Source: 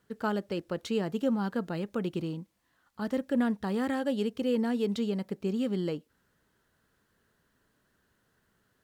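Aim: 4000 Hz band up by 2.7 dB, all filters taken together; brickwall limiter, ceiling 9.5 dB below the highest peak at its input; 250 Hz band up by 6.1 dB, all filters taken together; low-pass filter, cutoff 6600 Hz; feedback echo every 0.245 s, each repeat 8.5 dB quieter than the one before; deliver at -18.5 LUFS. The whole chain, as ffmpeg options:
-af "lowpass=6.6k,equalizer=f=250:t=o:g=7,equalizer=f=4k:t=o:g=4,alimiter=limit=-20.5dB:level=0:latency=1,aecho=1:1:245|490|735|980:0.376|0.143|0.0543|0.0206,volume=10.5dB"

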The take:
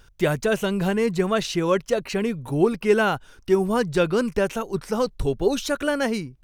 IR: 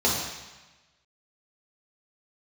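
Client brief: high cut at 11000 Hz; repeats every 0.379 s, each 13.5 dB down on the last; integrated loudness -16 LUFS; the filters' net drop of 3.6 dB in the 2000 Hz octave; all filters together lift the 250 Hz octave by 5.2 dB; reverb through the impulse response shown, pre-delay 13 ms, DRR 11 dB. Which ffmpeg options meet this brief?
-filter_complex "[0:a]lowpass=11k,equalizer=f=250:t=o:g=7,equalizer=f=2k:t=o:g=-5.5,aecho=1:1:379|758:0.211|0.0444,asplit=2[a][b];[1:a]atrim=start_sample=2205,adelay=13[c];[b][c]afir=irnorm=-1:irlink=0,volume=-25.5dB[d];[a][d]amix=inputs=2:normalize=0,volume=3.5dB"

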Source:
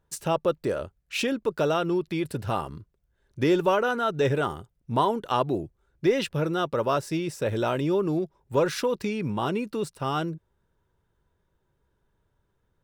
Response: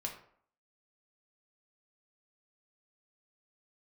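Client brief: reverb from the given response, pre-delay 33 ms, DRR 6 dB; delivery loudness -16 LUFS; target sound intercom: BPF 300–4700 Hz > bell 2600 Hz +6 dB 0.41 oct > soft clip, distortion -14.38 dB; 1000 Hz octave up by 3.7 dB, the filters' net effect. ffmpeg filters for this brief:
-filter_complex "[0:a]equalizer=f=1k:t=o:g=4.5,asplit=2[a][b];[1:a]atrim=start_sample=2205,adelay=33[c];[b][c]afir=irnorm=-1:irlink=0,volume=-6dB[d];[a][d]amix=inputs=2:normalize=0,highpass=300,lowpass=4.7k,equalizer=f=2.6k:t=o:w=0.41:g=6,asoftclip=threshold=-16.5dB,volume=11dB"

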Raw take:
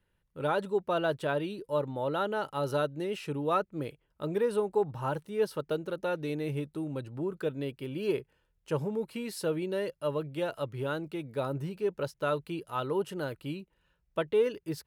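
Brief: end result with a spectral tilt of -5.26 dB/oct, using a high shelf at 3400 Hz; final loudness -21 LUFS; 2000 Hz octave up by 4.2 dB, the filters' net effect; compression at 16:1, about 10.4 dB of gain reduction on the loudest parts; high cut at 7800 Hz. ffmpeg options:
-af "lowpass=7.8k,equalizer=f=2k:t=o:g=8,highshelf=f=3.4k:g=-5,acompressor=threshold=-32dB:ratio=16,volume=17dB"

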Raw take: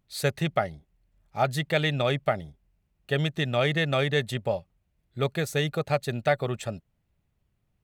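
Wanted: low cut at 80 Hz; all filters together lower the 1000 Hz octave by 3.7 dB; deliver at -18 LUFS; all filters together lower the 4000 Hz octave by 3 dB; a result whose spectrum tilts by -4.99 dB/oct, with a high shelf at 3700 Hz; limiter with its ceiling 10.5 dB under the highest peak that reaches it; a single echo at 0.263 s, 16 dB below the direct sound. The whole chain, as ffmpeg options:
-af "highpass=80,equalizer=f=1k:t=o:g=-6,highshelf=f=3.7k:g=6.5,equalizer=f=4k:t=o:g=-7,alimiter=limit=-22.5dB:level=0:latency=1,aecho=1:1:263:0.158,volume=16dB"

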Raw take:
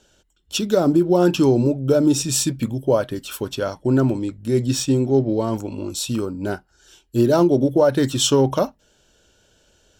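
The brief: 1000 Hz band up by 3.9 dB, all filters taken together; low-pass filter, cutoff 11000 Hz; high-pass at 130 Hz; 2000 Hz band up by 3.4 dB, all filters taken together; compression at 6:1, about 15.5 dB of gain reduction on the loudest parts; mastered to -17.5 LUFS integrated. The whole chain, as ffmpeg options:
-af "highpass=130,lowpass=11k,equalizer=f=1k:t=o:g=4.5,equalizer=f=2k:t=o:g=3,acompressor=threshold=-28dB:ratio=6,volume=14dB"

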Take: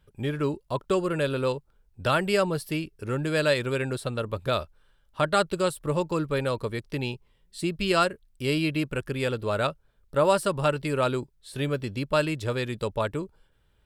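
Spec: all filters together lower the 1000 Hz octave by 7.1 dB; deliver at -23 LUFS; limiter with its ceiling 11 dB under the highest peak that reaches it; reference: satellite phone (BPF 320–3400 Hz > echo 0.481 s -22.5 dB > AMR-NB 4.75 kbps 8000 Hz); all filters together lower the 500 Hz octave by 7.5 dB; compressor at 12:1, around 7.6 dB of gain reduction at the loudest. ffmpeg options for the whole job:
-af "equalizer=f=500:t=o:g=-6,equalizer=f=1k:t=o:g=-8.5,acompressor=threshold=-30dB:ratio=12,alimiter=level_in=6dB:limit=-24dB:level=0:latency=1,volume=-6dB,highpass=320,lowpass=3.4k,aecho=1:1:481:0.075,volume=23.5dB" -ar 8000 -c:a libopencore_amrnb -b:a 4750

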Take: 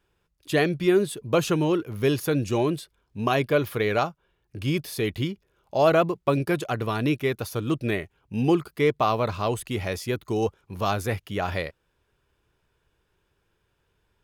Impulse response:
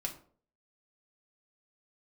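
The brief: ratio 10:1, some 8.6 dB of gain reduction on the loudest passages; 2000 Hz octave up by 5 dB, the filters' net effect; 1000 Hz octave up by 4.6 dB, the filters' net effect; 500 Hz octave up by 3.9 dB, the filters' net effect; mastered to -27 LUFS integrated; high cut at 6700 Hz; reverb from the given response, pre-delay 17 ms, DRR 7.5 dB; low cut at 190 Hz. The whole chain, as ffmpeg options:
-filter_complex "[0:a]highpass=190,lowpass=6.7k,equalizer=f=500:t=o:g=4,equalizer=f=1k:t=o:g=3.5,equalizer=f=2k:t=o:g=5,acompressor=threshold=-20dB:ratio=10,asplit=2[a][b];[1:a]atrim=start_sample=2205,adelay=17[c];[b][c]afir=irnorm=-1:irlink=0,volume=-8.5dB[d];[a][d]amix=inputs=2:normalize=0,volume=-0.5dB"

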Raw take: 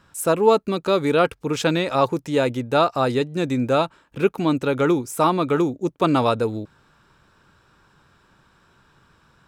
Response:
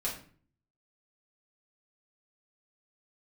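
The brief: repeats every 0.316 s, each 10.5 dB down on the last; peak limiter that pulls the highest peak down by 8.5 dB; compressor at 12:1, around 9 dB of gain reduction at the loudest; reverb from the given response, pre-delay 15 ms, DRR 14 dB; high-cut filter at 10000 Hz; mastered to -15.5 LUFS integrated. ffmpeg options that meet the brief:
-filter_complex "[0:a]lowpass=10k,acompressor=threshold=-20dB:ratio=12,alimiter=limit=-20dB:level=0:latency=1,aecho=1:1:316|632|948:0.299|0.0896|0.0269,asplit=2[a][b];[1:a]atrim=start_sample=2205,adelay=15[c];[b][c]afir=irnorm=-1:irlink=0,volume=-18dB[d];[a][d]amix=inputs=2:normalize=0,volume=13.5dB"

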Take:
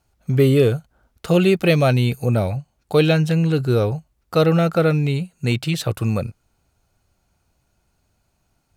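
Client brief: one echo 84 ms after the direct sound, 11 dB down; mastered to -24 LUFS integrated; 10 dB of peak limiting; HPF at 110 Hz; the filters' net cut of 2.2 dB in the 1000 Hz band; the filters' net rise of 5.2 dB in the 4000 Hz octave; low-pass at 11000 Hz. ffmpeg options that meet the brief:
-af "highpass=110,lowpass=11k,equalizer=f=1k:t=o:g=-4,equalizer=f=4k:t=o:g=6.5,alimiter=limit=-12dB:level=0:latency=1,aecho=1:1:84:0.282,volume=-1.5dB"

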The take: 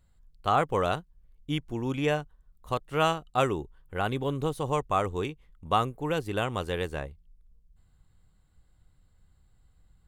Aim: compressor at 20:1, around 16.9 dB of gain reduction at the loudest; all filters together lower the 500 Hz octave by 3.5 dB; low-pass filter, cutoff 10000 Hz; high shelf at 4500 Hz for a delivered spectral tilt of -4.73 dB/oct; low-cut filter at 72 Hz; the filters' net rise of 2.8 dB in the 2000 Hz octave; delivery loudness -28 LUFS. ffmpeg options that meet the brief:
-af "highpass=72,lowpass=10k,equalizer=f=500:t=o:g=-4.5,equalizer=f=2k:t=o:g=6,highshelf=f=4.5k:g=-7.5,acompressor=threshold=-36dB:ratio=20,volume=14.5dB"

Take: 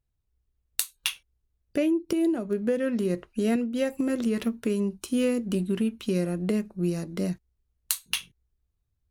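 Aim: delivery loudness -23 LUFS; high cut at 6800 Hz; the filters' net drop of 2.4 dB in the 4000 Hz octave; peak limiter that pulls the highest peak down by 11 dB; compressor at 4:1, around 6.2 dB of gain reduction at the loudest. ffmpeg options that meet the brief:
-af "lowpass=6.8k,equalizer=f=4k:t=o:g=-3,acompressor=threshold=-28dB:ratio=4,volume=11dB,alimiter=limit=-13dB:level=0:latency=1"

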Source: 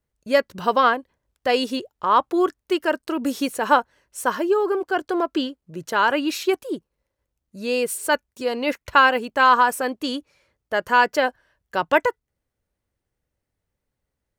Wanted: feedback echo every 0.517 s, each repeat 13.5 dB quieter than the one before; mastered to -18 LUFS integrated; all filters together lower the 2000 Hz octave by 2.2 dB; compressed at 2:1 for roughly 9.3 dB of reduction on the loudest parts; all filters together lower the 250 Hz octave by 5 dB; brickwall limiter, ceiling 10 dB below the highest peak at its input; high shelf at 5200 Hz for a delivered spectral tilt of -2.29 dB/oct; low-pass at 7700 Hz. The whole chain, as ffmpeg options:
-af "lowpass=7.7k,equalizer=f=250:t=o:g=-7,equalizer=f=2k:t=o:g=-4,highshelf=f=5.2k:g=7,acompressor=threshold=-29dB:ratio=2,alimiter=limit=-21.5dB:level=0:latency=1,aecho=1:1:517|1034:0.211|0.0444,volume=14.5dB"

